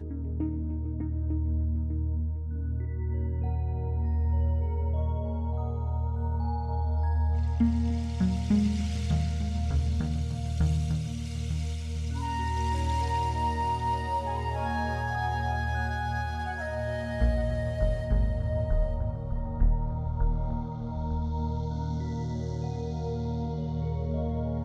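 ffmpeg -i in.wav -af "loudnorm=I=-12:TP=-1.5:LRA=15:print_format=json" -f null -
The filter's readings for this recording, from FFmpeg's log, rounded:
"input_i" : "-30.4",
"input_tp" : "-11.8",
"input_lra" : "4.0",
"input_thresh" : "-40.4",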